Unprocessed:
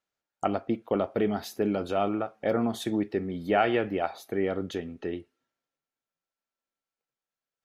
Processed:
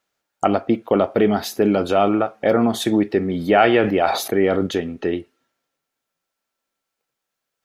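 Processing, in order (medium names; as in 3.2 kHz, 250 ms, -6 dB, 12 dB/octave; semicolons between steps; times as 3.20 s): in parallel at -2 dB: peak limiter -20 dBFS, peak gain reduction 9 dB; on the sum: bass shelf 130 Hz -4.5 dB; 3.25–4.67 s: decay stretcher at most 66 dB/s; trim +6.5 dB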